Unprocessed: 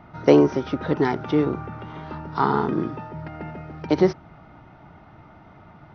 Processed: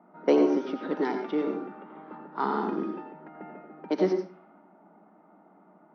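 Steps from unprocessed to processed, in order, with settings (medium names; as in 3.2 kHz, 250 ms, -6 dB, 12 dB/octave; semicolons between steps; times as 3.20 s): elliptic high-pass 190 Hz, stop band 40 dB; level-controlled noise filter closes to 960 Hz, open at -19.5 dBFS; on a send: reverberation RT60 0.35 s, pre-delay 80 ms, DRR 5.5 dB; on the sum: trim -7 dB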